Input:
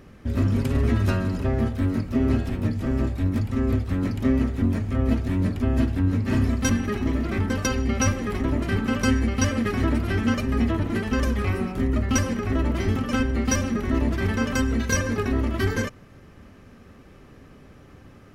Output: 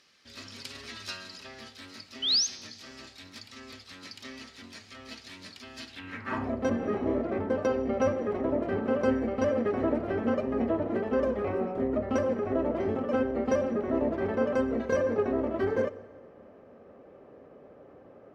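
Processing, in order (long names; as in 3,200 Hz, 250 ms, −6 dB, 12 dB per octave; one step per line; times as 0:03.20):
0:02.22–0:02.47: sound drawn into the spectrogram rise 2,900–6,700 Hz −29 dBFS
dense smooth reverb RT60 1.6 s, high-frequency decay 0.9×, DRR 15.5 dB
band-pass filter sweep 4,600 Hz → 560 Hz, 0:05.88–0:06.55
0:06.78–0:07.22: double-tracking delay 28 ms −2.5 dB
level +6.5 dB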